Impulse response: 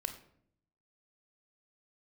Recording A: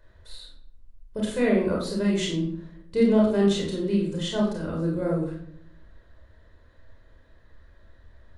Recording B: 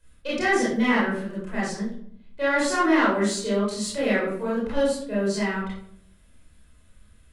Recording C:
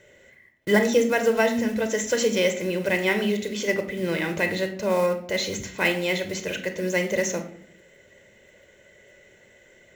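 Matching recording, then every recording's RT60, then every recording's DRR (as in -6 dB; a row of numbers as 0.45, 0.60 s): C; 0.65, 0.65, 0.65 s; -3.0, -9.0, 7.0 dB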